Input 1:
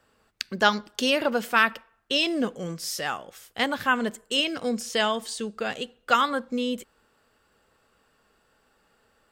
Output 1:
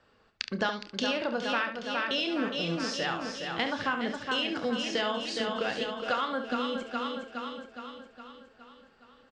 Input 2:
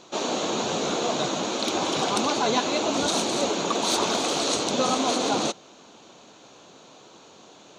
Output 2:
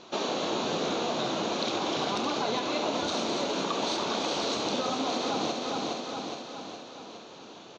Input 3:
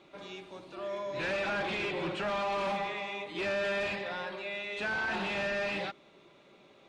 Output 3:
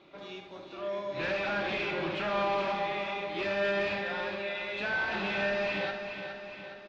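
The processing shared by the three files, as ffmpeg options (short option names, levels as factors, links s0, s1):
-filter_complex "[0:a]asplit=2[s0][s1];[s1]aecho=0:1:414|828|1242|1656|2070|2484|2898:0.376|0.207|0.114|0.0625|0.0344|0.0189|0.0104[s2];[s0][s2]amix=inputs=2:normalize=0,acompressor=threshold=0.0447:ratio=6,lowpass=f=5600:w=0.5412,lowpass=f=5600:w=1.3066,asplit=2[s3][s4];[s4]aecho=0:1:30|70:0.299|0.355[s5];[s3][s5]amix=inputs=2:normalize=0"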